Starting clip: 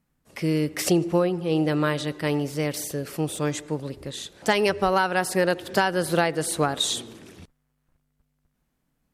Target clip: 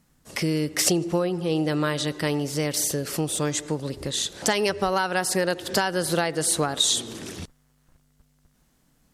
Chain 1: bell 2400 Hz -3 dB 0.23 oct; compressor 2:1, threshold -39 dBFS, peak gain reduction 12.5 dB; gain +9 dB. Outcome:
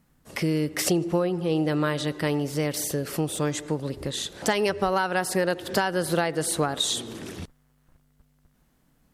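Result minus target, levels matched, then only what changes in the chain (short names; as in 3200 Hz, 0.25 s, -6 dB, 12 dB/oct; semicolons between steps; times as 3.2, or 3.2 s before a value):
8000 Hz band -4.0 dB
add after compressor: bell 6500 Hz +6.5 dB 1.8 oct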